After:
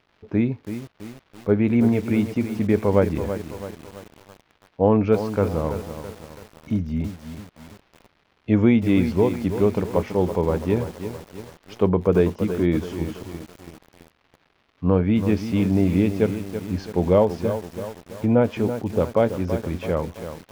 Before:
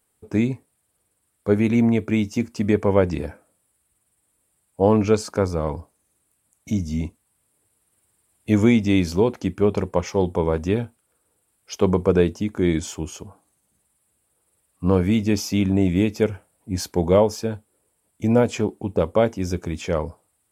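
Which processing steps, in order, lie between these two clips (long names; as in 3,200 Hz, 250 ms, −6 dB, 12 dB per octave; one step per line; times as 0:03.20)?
surface crackle 400 per second −41 dBFS
high-frequency loss of the air 290 metres
feedback echo at a low word length 331 ms, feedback 55%, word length 6 bits, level −9.5 dB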